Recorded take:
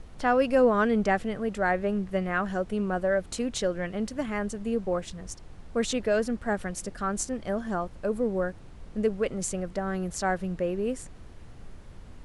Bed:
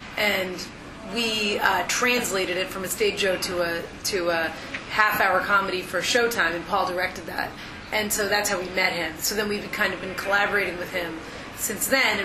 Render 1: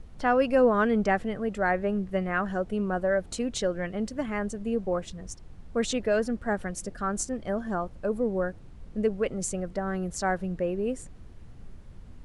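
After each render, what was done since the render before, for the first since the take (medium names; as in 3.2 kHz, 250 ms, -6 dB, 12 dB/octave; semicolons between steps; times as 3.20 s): noise reduction 6 dB, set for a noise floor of -46 dBFS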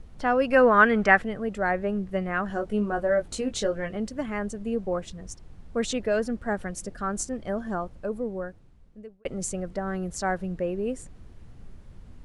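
0.51–1.22 s: peaking EQ 1.7 kHz +12 dB 1.8 oct; 2.48–3.97 s: doubling 19 ms -5 dB; 7.73–9.25 s: fade out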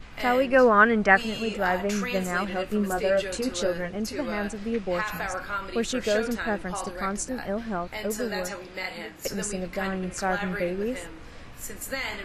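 add bed -11 dB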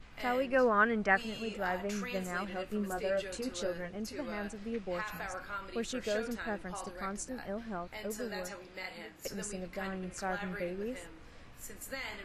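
trim -9.5 dB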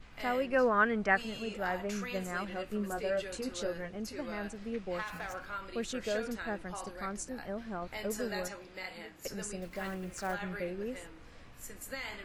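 4.99–5.46 s: sliding maximum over 3 samples; 7.82–8.48 s: gain +3 dB; 9.62–10.36 s: block-companded coder 5-bit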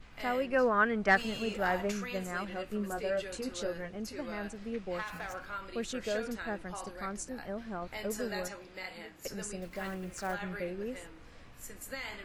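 1.07–1.92 s: waveshaping leveller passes 1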